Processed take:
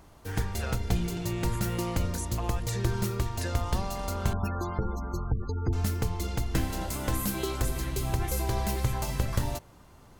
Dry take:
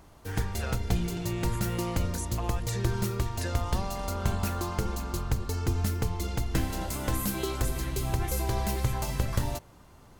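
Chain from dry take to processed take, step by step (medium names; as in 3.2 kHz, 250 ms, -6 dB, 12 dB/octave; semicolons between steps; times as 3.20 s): 4.33–5.73 s: spectral gate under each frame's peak -25 dB strong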